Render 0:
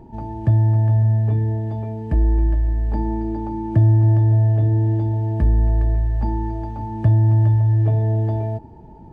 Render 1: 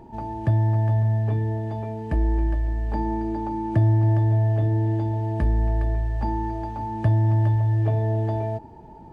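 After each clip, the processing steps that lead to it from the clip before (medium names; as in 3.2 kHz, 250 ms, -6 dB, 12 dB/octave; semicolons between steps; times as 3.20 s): bass shelf 400 Hz -9 dB; trim +3.5 dB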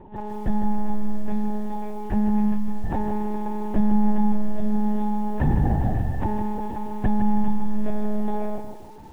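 Chebyshev shaper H 8 -34 dB, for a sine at -10.5 dBFS; monotone LPC vocoder at 8 kHz 210 Hz; bit-crushed delay 158 ms, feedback 35%, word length 8-bit, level -8.5 dB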